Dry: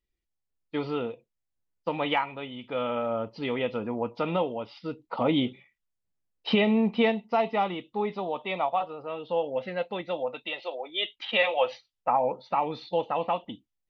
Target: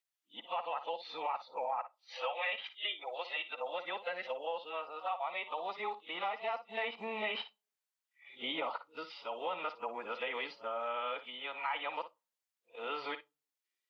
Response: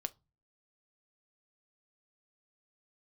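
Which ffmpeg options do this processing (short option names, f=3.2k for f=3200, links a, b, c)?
-filter_complex "[0:a]areverse,acrossover=split=3200[a][b];[b]acompressor=threshold=-53dB:ratio=4:attack=1:release=60[c];[a][c]amix=inputs=2:normalize=0,highpass=920,acompressor=threshold=-36dB:ratio=5,asplit=2[d][e];[1:a]atrim=start_sample=2205,adelay=56[f];[e][f]afir=irnorm=-1:irlink=0,volume=-11dB[g];[d][g]amix=inputs=2:normalize=0,volume=2dB"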